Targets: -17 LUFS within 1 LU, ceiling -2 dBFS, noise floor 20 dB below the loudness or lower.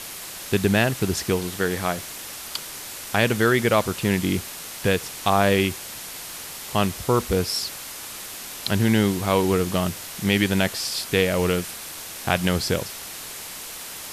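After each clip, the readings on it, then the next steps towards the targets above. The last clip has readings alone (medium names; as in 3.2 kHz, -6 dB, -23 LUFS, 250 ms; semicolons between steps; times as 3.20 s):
noise floor -37 dBFS; noise floor target -44 dBFS; loudness -24.0 LUFS; peak level -3.5 dBFS; loudness target -17.0 LUFS
-> noise reduction 7 dB, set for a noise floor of -37 dBFS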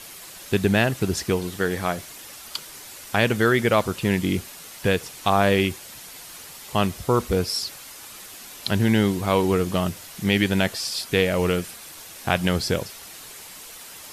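noise floor -42 dBFS; noise floor target -43 dBFS
-> noise reduction 6 dB, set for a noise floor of -42 dBFS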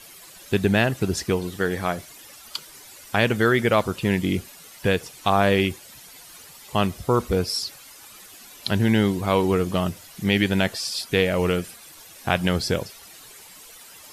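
noise floor -46 dBFS; loudness -23.0 LUFS; peak level -3.5 dBFS; loudness target -17.0 LUFS
-> trim +6 dB; peak limiter -2 dBFS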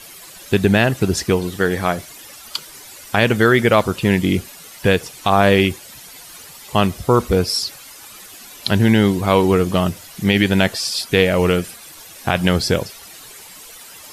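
loudness -17.5 LUFS; peak level -2.0 dBFS; noise floor -40 dBFS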